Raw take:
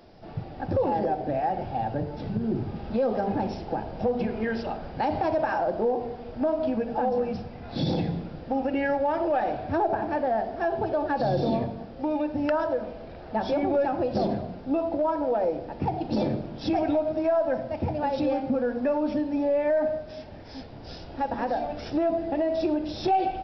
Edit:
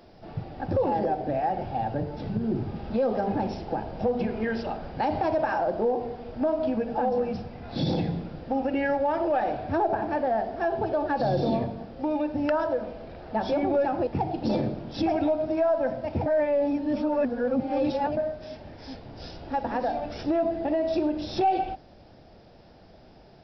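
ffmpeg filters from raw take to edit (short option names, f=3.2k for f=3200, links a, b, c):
-filter_complex "[0:a]asplit=4[a][b][c][d];[a]atrim=end=14.072[e];[b]atrim=start=15.738:end=17.932[f];[c]atrim=start=17.928:end=19.842,asetpts=PTS-STARTPTS,areverse[g];[d]atrim=start=19.838[h];[e][f]acrossfade=d=0.004:c1=hsin:c2=hsin[i];[i][g]acrossfade=d=0.004:c1=hsin:c2=hsin[j];[j][h]acrossfade=d=0.004:c1=hsin:c2=hsin"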